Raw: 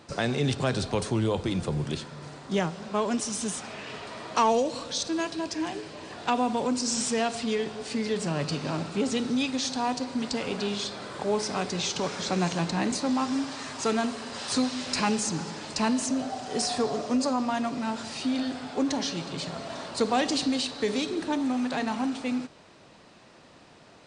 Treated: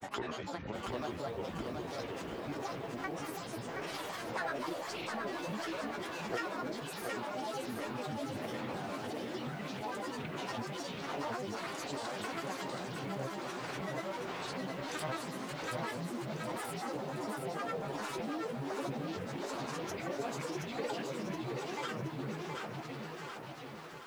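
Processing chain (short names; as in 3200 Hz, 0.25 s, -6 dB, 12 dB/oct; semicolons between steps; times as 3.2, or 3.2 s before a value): resonator bank C#2 major, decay 0.68 s; split-band echo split 610 Hz, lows 84 ms, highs 0.646 s, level -11 dB; compressor, threshold -51 dBFS, peak gain reduction 17 dB; tone controls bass -8 dB, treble -12 dB; grains, pitch spread up and down by 12 st; lo-fi delay 0.723 s, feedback 55%, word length 13-bit, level -4.5 dB; gain +16.5 dB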